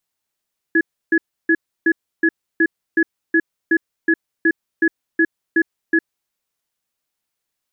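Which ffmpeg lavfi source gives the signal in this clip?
ffmpeg -f lavfi -i "aevalsrc='0.2*(sin(2*PI*329*t)+sin(2*PI*1690*t))*clip(min(mod(t,0.37),0.06-mod(t,0.37))/0.005,0,1)':duration=5.45:sample_rate=44100" out.wav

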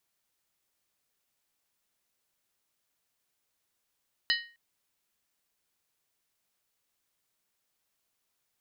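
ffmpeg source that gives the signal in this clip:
ffmpeg -f lavfi -i "aevalsrc='0.0631*pow(10,-3*t/0.39)*sin(2*PI*1870*t)+0.0531*pow(10,-3*t/0.309)*sin(2*PI*2980.8*t)+0.0447*pow(10,-3*t/0.267)*sin(2*PI*3994.3*t)+0.0376*pow(10,-3*t/0.257)*sin(2*PI*4293.5*t)+0.0316*pow(10,-3*t/0.239)*sin(2*PI*4961.1*t)':duration=0.26:sample_rate=44100" out.wav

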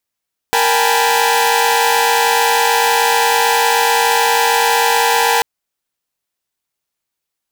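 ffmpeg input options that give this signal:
ffmpeg -f lavfi -i "aevalsrc='0.168*((2*mod(466.16*t,1)-1)+(2*mod(783.99*t,1)-1)+(2*mod(830.61*t,1)-1)+(2*mod(880*t,1)-1)+(2*mod(987.77*t,1)-1))':duration=4.89:sample_rate=44100" out.wav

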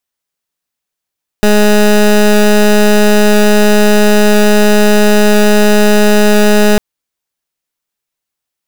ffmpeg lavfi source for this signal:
ffmpeg -f lavfi -i "aevalsrc='0.473*(2*lt(mod(209*t,1),0.19)-1)':duration=5.35:sample_rate=44100" out.wav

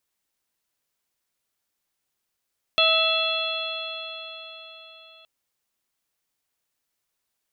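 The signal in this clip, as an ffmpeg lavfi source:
ffmpeg -f lavfi -i "aevalsrc='0.0708*pow(10,-3*t/4.4)*sin(2*PI*646.26*t)+0.0562*pow(10,-3*t/4.4)*sin(2*PI*1300.02*t)+0.00891*pow(10,-3*t/4.4)*sin(2*PI*1968.67*t)+0.0891*pow(10,-3*t/4.4)*sin(2*PI*2659.28*t)+0.119*pow(10,-3*t/4.4)*sin(2*PI*3378.56*t)+0.0501*pow(10,-3*t/4.4)*sin(2*PI*4132.75*t)':duration=2.47:sample_rate=44100" out.wav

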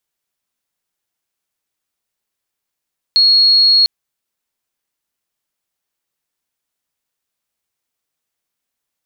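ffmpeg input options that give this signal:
ffmpeg -f lavfi -i "sine=frequency=4310:duration=0.7:sample_rate=44100,volume=11.06dB" out.wav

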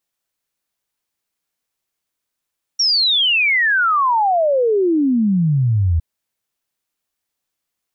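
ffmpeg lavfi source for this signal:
ffmpeg -f lavfi -i "aevalsrc='0.237*clip(min(t,3.21-t)/0.01,0,1)*sin(2*PI*5700*3.21/log(78/5700)*(exp(log(78/5700)*t/3.21)-1))':duration=3.21:sample_rate=44100" out.wav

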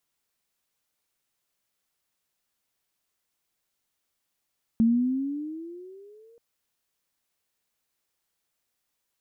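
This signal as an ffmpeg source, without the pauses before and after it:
ffmpeg -f lavfi -i "aevalsrc='pow(10,(-16-36.5*t/1.58)/20)*sin(2*PI*223*1.58/(13*log(2)/12)*(exp(13*log(2)/12*t/1.58)-1))':duration=1.58:sample_rate=44100" out.wav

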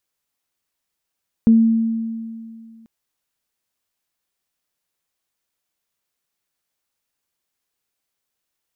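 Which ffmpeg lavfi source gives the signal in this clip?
ffmpeg -f lavfi -i "aevalsrc='0.447*pow(10,-3*t/2.27)*sin(2*PI*226*t)+0.0447*pow(10,-3*t/0.3)*sin(2*PI*452*t)':duration=1.39:sample_rate=44100" out.wav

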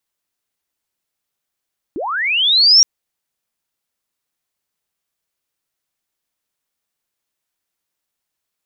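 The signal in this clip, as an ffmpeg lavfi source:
ffmpeg -f lavfi -i "aevalsrc='pow(10,(-21+16.5*t/0.87)/20)*sin(2*PI*(260*t+5440*t*t/(2*0.87)))':duration=0.87:sample_rate=44100" out.wav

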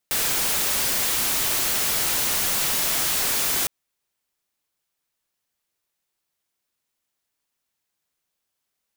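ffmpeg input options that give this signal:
ffmpeg -f lavfi -i "anoisesrc=color=white:amplitude=0.123:duration=3.56:sample_rate=44100:seed=1" out.wav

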